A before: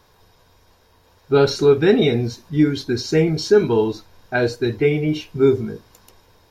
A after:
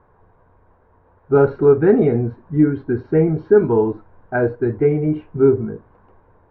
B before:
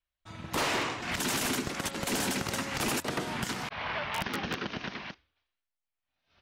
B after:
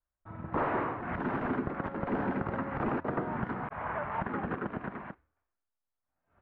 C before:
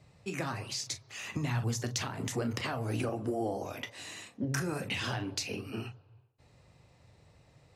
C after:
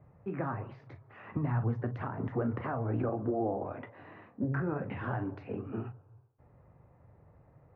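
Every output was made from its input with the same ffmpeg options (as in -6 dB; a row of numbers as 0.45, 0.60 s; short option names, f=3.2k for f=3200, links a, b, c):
-af "lowpass=f=1.5k:w=0.5412,lowpass=f=1.5k:w=1.3066,volume=1.5dB"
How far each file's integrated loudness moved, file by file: +1.0, -2.0, +0.5 LU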